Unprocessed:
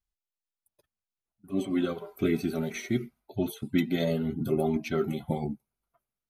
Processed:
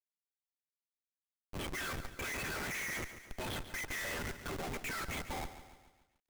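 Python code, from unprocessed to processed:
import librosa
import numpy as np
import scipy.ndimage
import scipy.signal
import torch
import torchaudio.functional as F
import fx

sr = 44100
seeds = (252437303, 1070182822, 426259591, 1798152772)

p1 = fx.rider(x, sr, range_db=10, speed_s=0.5)
p2 = x + (p1 * 10.0 ** (1.0 / 20.0))
p3 = fx.ladder_bandpass(p2, sr, hz=2000.0, resonance_pct=60)
p4 = fx.schmitt(p3, sr, flips_db=-53.5)
p5 = fx.echo_crushed(p4, sr, ms=141, feedback_pct=55, bits=13, wet_db=-12.0)
y = p5 * 10.0 ** (9.0 / 20.0)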